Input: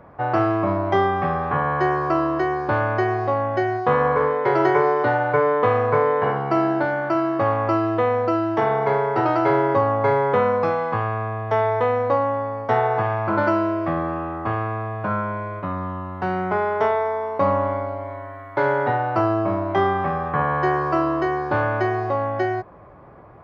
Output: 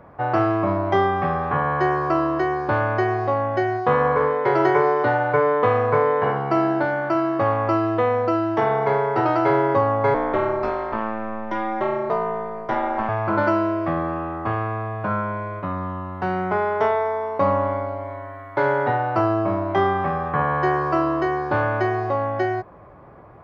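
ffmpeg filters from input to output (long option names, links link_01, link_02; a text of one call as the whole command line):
ffmpeg -i in.wav -filter_complex "[0:a]asettb=1/sr,asplit=3[link_01][link_02][link_03];[link_01]atrim=end=10.144[link_04];[link_02]atrim=start=10.14:end=13.09,asetpts=PTS-STARTPTS,afade=type=in:duration=0.004:curve=qsin,afade=type=out:start_time=2.946:duration=0.004:curve=qsin,aeval=exprs='val(0)*sin(2*PI*110*n/s)':channel_layout=same[link_05];[link_03]atrim=start=13.086[link_06];[link_04][link_05]acrossfade=duration=0.004:curve1=hsin:curve2=qsin[link_07];[link_07][link_06]acrossfade=duration=0.004:curve1=qsin:curve2=hsin" out.wav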